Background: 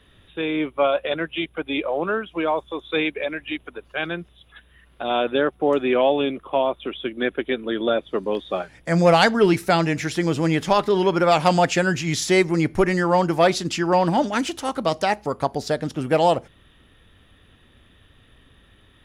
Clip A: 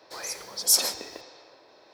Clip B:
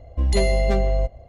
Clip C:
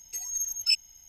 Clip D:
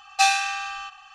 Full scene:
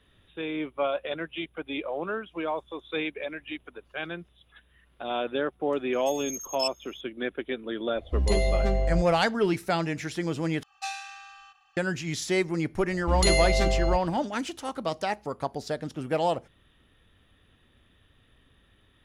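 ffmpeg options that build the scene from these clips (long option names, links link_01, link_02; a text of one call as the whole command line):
ffmpeg -i bed.wav -i cue0.wav -i cue1.wav -i cue2.wav -i cue3.wav -filter_complex "[2:a]asplit=2[link_01][link_02];[0:a]volume=-8dB[link_03];[3:a]asuperstop=centerf=4100:order=8:qfactor=4.5[link_04];[4:a]equalizer=frequency=89:width_type=o:width=0.77:gain=2.5[link_05];[link_02]tiltshelf=frequency=1100:gain=-5.5[link_06];[link_03]asplit=2[link_07][link_08];[link_07]atrim=end=10.634[link_09];[link_05]atrim=end=1.14,asetpts=PTS-STARTPTS,volume=-16dB[link_10];[link_08]atrim=start=11.766[link_11];[link_04]atrim=end=1.08,asetpts=PTS-STARTPTS,volume=-6.5dB,afade=type=in:duration=0.004:curve=hsin,afade=type=out:start_time=1.076:duration=0.004:curve=hsin,adelay=261513S[link_12];[link_01]atrim=end=1.28,asetpts=PTS-STARTPTS,volume=-5dB,afade=type=in:duration=0.004:curve=hsin,afade=type=out:start_time=1.276:duration=0.004:curve=hsin,adelay=7950[link_13];[link_06]atrim=end=1.28,asetpts=PTS-STARTPTS,afade=type=in:duration=0.004:curve=hsin,afade=type=out:start_time=1.276:duration=0.004:curve=hsin,adelay=12900[link_14];[link_09][link_10]acrossfade=duration=0.004:curve1=hsin:curve2=hsin[link_15];[link_15][link_11]acrossfade=duration=0.004:curve1=hsin:curve2=hsin[link_16];[link_16][link_12][link_13][link_14]amix=inputs=4:normalize=0" out.wav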